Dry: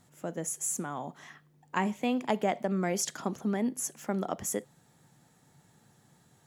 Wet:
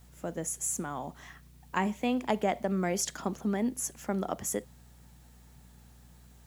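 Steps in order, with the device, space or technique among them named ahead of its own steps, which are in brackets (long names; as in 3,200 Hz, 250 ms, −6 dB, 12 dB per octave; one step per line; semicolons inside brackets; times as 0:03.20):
video cassette with head-switching buzz (hum with harmonics 60 Hz, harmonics 4, −56 dBFS −7 dB per octave; white noise bed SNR 33 dB)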